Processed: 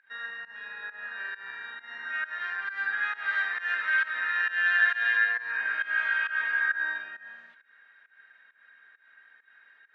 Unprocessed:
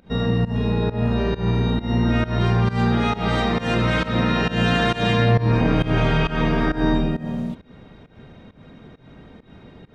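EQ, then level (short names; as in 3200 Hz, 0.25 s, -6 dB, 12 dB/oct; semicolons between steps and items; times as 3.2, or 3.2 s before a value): ladder band-pass 1700 Hz, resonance 90%; +2.0 dB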